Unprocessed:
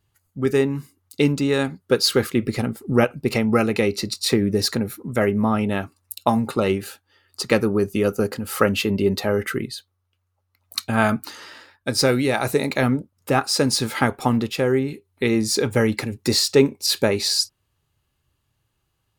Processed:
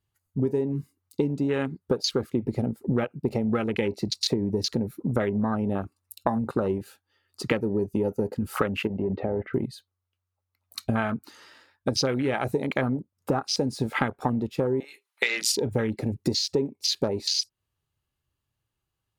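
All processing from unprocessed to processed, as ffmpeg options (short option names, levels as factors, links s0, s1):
-filter_complex "[0:a]asettb=1/sr,asplit=3[s0][s1][s2];[s0]atrim=end=8.874[s3];[s1]atrim=start=8.87:end=9.54,asetpts=PTS-STARTPTS,afade=t=in:d=0.004:c=qsin,afade=t=out:st=0.666:d=0.004:c=qsin,lowpass=f=2500:w=0.5412,lowpass=f=2500:w=1.3066,acompressor=threshold=0.0501:ratio=6:attack=3.2:release=140:knee=1:detection=peak[s4];[s2]atrim=start=9.536[s5];[s3][s4]acrossfade=d=0.004:c1=hsin:c2=qsin[s6];[s6][s5]acrossfade=d=0.004:c1=qsin:c2=hsin,asettb=1/sr,asplit=3[s7][s8][s9];[s7]atrim=end=14.804[s10];[s8]atrim=start=14.8:end=15.52,asetpts=PTS-STARTPTS,afade=t=in:d=0.004:c=qsin,afade=t=out:st=0.716:d=0.004:c=qsin,highpass=1100,acontrast=32,asplit=2[s11][s12];[s12]highpass=f=720:p=1,volume=4.47,asoftclip=type=tanh:threshold=0.531[s13];[s11][s13]amix=inputs=2:normalize=0,lowpass=f=6000:p=1,volume=0.501[s14];[s9]atrim=start=15.516[s15];[s10][s14]acrossfade=d=0.004:c1=hsin:c2=qsin[s16];[s16][s15]acrossfade=d=0.004:c1=qsin:c2=hsin,afwtdn=0.0562,acompressor=threshold=0.0398:ratio=10,volume=2"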